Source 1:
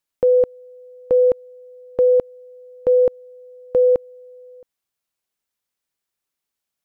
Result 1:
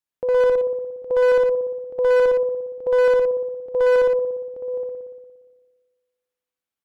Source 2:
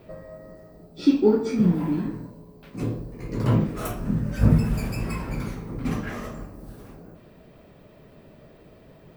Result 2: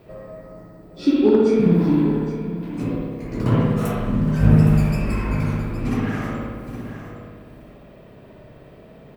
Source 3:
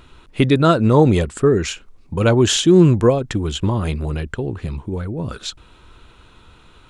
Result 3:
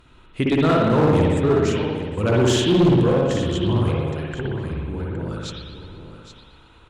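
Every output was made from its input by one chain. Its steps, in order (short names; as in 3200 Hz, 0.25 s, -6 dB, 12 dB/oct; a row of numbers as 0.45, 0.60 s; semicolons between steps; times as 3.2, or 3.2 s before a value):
on a send: echo 0.816 s -12 dB; on the sum: spring tank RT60 1.4 s, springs 58 ms, chirp 65 ms, DRR -3.5 dB; one-sided clip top -7 dBFS, bottom -2 dBFS; Doppler distortion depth 0.11 ms; match loudness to -20 LUFS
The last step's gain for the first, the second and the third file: -9.0, 0.0, -7.0 dB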